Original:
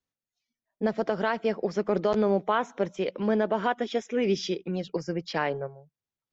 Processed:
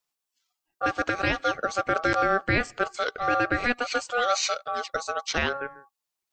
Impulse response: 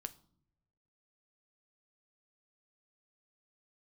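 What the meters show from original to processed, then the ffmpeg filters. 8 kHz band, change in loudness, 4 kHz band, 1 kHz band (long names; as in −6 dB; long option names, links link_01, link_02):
can't be measured, +2.0 dB, +6.5 dB, +5.0 dB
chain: -af "highshelf=frequency=2400:gain=10.5,aeval=exprs='val(0)*sin(2*PI*970*n/s)':channel_layout=same,volume=3dB"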